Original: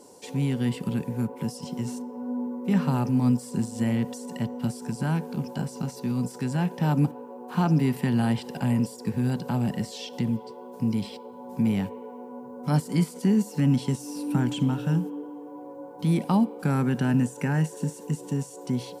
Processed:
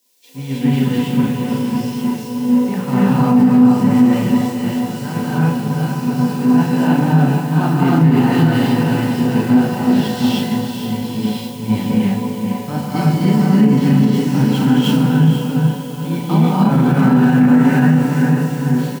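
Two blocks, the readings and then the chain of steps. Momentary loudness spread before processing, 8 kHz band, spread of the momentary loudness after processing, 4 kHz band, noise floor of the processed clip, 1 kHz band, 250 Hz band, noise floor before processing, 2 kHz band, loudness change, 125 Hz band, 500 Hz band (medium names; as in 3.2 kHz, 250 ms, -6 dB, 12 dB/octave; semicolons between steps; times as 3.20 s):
11 LU, +7.0 dB, 10 LU, +12.5 dB, -26 dBFS, +13.0 dB, +13.0 dB, -43 dBFS, +13.0 dB, +12.0 dB, +10.5 dB, +11.0 dB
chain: low-pass 4.1 kHz 12 dB/octave; feedback comb 250 Hz, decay 0.17 s, harmonics all, mix 60%; word length cut 10-bit, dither triangular; doubling 37 ms -5.5 dB; on a send: echo that smears into a reverb 477 ms, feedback 57%, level -4 dB; on the sum: gated-style reverb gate 350 ms rising, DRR -5.5 dB; loudness maximiser +14 dB; three bands expanded up and down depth 100%; trim -3.5 dB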